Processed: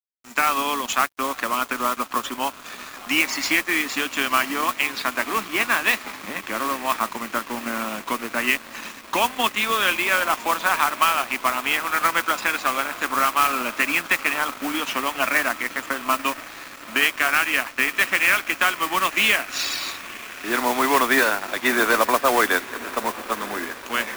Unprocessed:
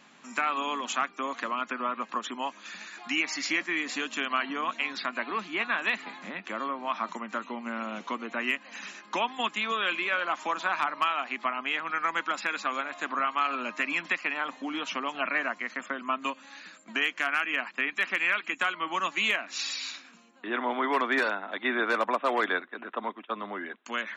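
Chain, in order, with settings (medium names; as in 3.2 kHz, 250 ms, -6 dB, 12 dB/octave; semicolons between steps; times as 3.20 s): echo that smears into a reverb 1007 ms, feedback 79%, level -15 dB; modulation noise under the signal 11 dB; crossover distortion -44 dBFS; trim +8.5 dB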